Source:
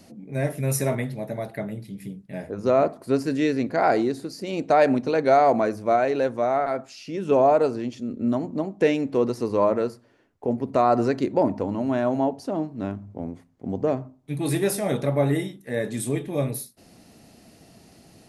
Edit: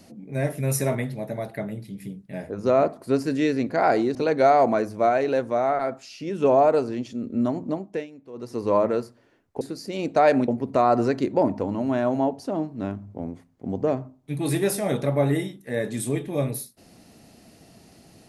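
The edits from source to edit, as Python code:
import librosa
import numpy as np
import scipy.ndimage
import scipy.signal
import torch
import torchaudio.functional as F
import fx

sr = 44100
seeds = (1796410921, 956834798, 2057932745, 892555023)

y = fx.edit(x, sr, fx.move(start_s=4.15, length_s=0.87, to_s=10.48),
    fx.fade_down_up(start_s=8.57, length_s=1.0, db=-20.0, fade_s=0.37), tone=tone)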